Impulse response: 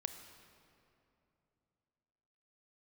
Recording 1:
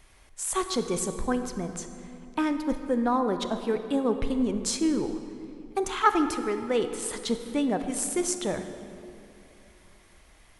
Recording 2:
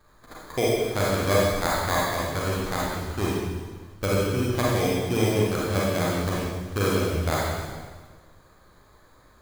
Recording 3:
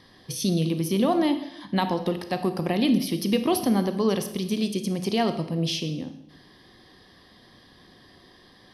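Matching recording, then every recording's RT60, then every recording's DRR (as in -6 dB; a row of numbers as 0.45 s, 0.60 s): 1; 2.9 s, 1.5 s, 0.80 s; 8.0 dB, -6.0 dB, 9.0 dB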